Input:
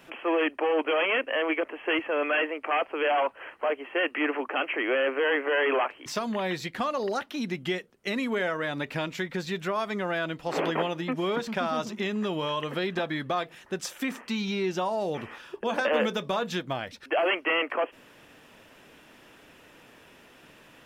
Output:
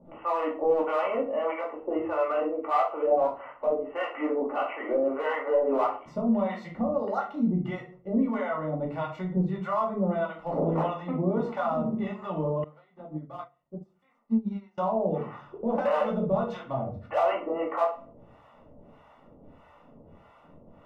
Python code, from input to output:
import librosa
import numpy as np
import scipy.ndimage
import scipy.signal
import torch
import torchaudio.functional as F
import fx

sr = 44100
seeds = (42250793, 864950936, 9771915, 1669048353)

p1 = scipy.signal.savgol_filter(x, 65, 4, mode='constant')
p2 = fx.peak_eq(p1, sr, hz=320.0, db=-9.0, octaves=0.75)
p3 = np.clip(10.0 ** (24.0 / 20.0) * p2, -1.0, 1.0) / 10.0 ** (24.0 / 20.0)
p4 = p2 + (p3 * librosa.db_to_amplitude(-4.0))
p5 = fx.harmonic_tremolo(p4, sr, hz=1.6, depth_pct=100, crossover_hz=640.0)
p6 = fx.room_shoebox(p5, sr, seeds[0], volume_m3=320.0, walls='furnished', distance_m=2.4)
y = fx.upward_expand(p6, sr, threshold_db=-37.0, expansion=2.5, at=(12.64, 14.78))